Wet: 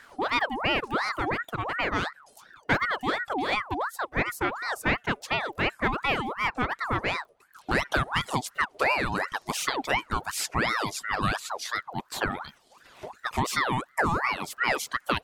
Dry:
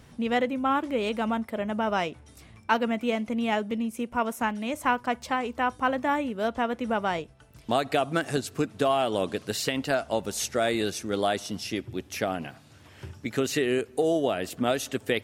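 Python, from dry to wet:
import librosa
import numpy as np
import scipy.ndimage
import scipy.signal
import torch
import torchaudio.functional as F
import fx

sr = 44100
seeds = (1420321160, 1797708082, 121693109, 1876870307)

p1 = fx.dmg_crackle(x, sr, seeds[0], per_s=12.0, level_db=-44.0)
p2 = 10.0 ** (-21.5 / 20.0) * np.tanh(p1 / 10.0 ** (-21.5 / 20.0))
p3 = p1 + (p2 * 10.0 ** (-5.5 / 20.0))
p4 = fx.dereverb_blind(p3, sr, rt60_s=0.9)
y = fx.ring_lfo(p4, sr, carrier_hz=1100.0, swing_pct=55, hz=2.8)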